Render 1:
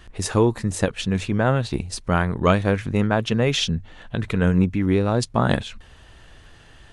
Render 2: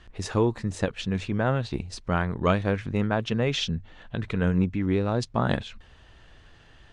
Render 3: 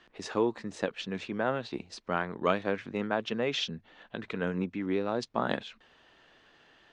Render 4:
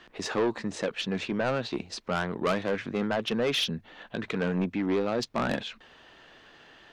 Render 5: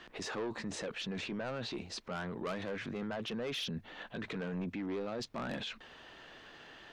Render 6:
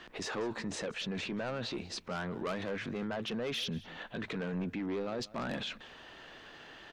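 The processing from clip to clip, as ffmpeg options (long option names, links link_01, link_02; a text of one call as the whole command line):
ffmpeg -i in.wav -af "lowpass=6000,volume=-5dB" out.wav
ffmpeg -i in.wav -filter_complex "[0:a]acrossover=split=200 6600:gain=0.0708 1 0.224[link_01][link_02][link_03];[link_01][link_02][link_03]amix=inputs=3:normalize=0,volume=-3dB" out.wav
ffmpeg -i in.wav -af "asoftclip=type=tanh:threshold=-28dB,volume=7dB" out.wav
ffmpeg -i in.wav -af "alimiter=level_in=9dB:limit=-24dB:level=0:latency=1:release=11,volume=-9dB" out.wav
ffmpeg -i in.wav -af "aecho=1:1:189:0.1,volume=2dB" out.wav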